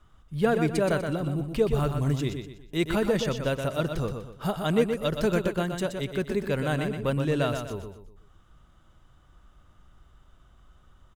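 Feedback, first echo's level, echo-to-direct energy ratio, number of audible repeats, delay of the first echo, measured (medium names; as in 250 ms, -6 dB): 37%, -6.5 dB, -6.0 dB, 4, 123 ms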